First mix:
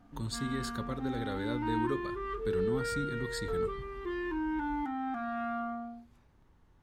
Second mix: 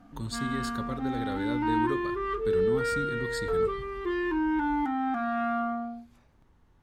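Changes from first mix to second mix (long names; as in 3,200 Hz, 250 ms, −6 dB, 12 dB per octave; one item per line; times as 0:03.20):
background +6.5 dB
reverb: on, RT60 1.3 s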